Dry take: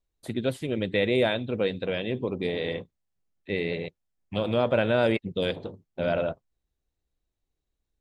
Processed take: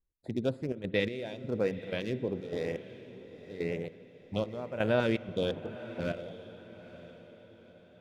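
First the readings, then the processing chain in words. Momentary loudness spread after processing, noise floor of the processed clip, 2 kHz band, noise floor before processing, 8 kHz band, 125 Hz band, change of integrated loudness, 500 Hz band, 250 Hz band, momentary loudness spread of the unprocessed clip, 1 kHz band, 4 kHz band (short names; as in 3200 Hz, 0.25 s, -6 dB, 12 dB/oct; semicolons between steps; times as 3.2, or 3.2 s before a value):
19 LU, -58 dBFS, -7.0 dB, -83 dBFS, n/a, -4.5 dB, -6.0 dB, -6.5 dB, -5.0 dB, 11 LU, -8.0 dB, -8.5 dB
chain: Wiener smoothing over 15 samples; LFO notch saw up 1 Hz 610–7900 Hz; step gate "x.xxxx.xx...xx" 125 bpm -12 dB; on a send: diffused feedback echo 0.925 s, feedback 43%, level -15 dB; on the sum: spring tank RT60 3.2 s, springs 57 ms, chirp 25 ms, DRR 18.5 dB; gain -3 dB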